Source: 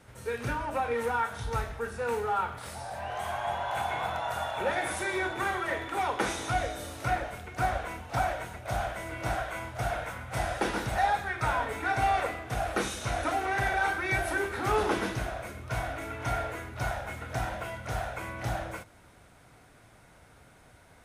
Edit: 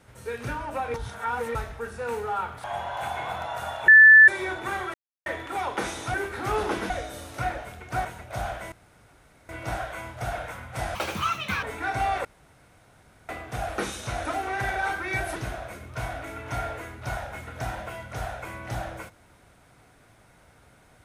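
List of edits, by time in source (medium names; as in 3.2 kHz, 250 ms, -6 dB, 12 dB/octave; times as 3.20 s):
0.94–1.55 s: reverse
2.64–3.38 s: delete
4.62–5.02 s: bleep 1.75 kHz -8 dBFS
5.68 s: insert silence 0.32 s
7.71–8.40 s: delete
9.07 s: insert room tone 0.77 s
10.53–11.65 s: speed 165%
12.27 s: insert room tone 1.04 s
14.34–15.10 s: move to 6.56 s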